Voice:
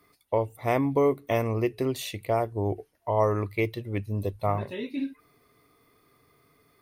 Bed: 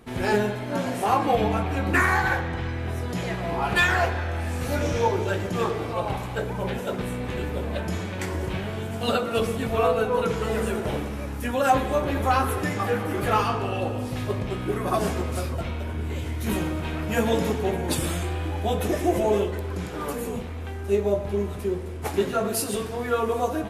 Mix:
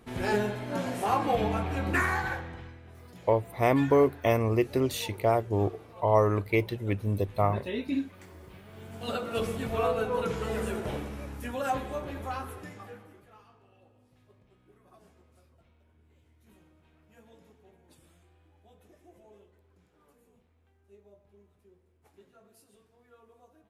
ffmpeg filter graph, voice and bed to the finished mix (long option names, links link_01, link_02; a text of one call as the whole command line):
ffmpeg -i stem1.wav -i stem2.wav -filter_complex "[0:a]adelay=2950,volume=1dB[link_01];[1:a]volume=10dB,afade=type=out:start_time=1.87:duration=0.94:silence=0.158489,afade=type=in:start_time=8.65:duration=0.78:silence=0.177828,afade=type=out:start_time=10.79:duration=2.47:silence=0.0375837[link_02];[link_01][link_02]amix=inputs=2:normalize=0" out.wav